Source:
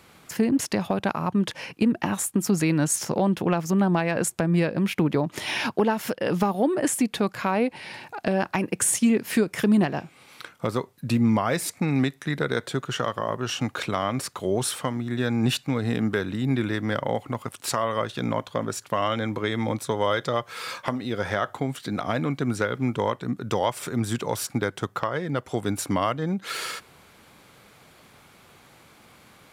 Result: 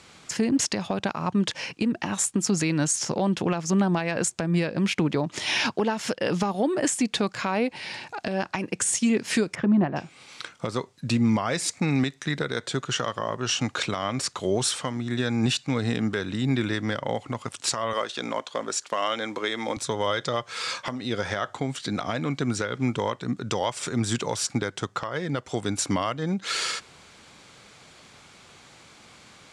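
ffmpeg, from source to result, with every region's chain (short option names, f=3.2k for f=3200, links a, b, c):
-filter_complex "[0:a]asettb=1/sr,asplit=3[a][b][c];[a]atrim=end=9.554[d];[b]atrim=start=9.55:end=9.96,asetpts=PTS-STARTPTS,afade=t=in:d=0.004:c=qsin,afade=t=out:st=0.406:d=0.004:c=qsin,lowpass=1.3k,bandreject=f=440:w=5.7[e];[c]atrim=start=9.956[f];[d][e]acrossfade=d=0.004:c1=hsin:c2=qsin[g];[g][f]acrossfade=d=0.004:c1=qsin:c2=hsin,asettb=1/sr,asplit=3[h][i][j];[h]atrim=end=17.934[k];[i]atrim=start=17.93:end=19.77,asetpts=PTS-STARTPTS,afade=t=in:d=0.004:c=qsin,afade=t=out:st=1.836:d=0.004:c=qsin,highpass=320,acrusher=bits=9:mode=log:mix=0:aa=0.000001[l];[j]atrim=start=19.766[m];[k][l]acrossfade=d=0.004:c1=hsin:c2=qsin[n];[n][m]acrossfade=d=0.004:c1=qsin:c2=hsin,lowpass=f=7.7k:w=0.5412,lowpass=f=7.7k:w=1.3066,highshelf=f=3.6k:g=10.5,alimiter=limit=-14dB:level=0:latency=1:release=213"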